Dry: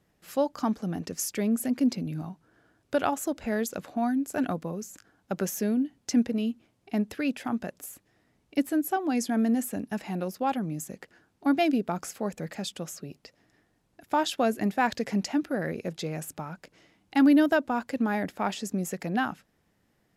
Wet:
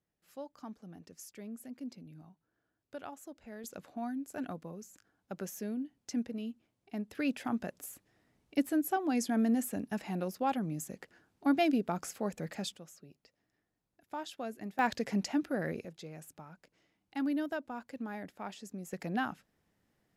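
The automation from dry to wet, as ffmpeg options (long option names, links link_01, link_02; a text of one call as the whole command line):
ffmpeg -i in.wav -af "asetnsamples=nb_out_samples=441:pad=0,asendcmd='3.64 volume volume -11dB;7.15 volume volume -4dB;12.76 volume volume -15dB;14.79 volume volume -4.5dB;15.85 volume volume -13.5dB;18.93 volume volume -6dB',volume=-18.5dB" out.wav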